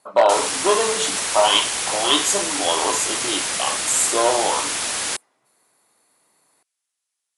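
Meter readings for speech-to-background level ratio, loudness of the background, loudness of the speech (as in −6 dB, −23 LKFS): 1.5 dB, −22.0 LKFS, −20.5 LKFS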